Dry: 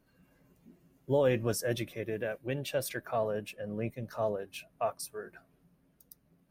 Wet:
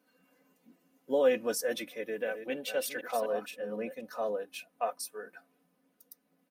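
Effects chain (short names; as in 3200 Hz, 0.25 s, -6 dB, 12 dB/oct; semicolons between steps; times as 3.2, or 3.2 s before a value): 2.01–4.01 reverse delay 0.25 s, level -8 dB; HPF 310 Hz 12 dB/oct; comb 4 ms, depth 82%; gain -1 dB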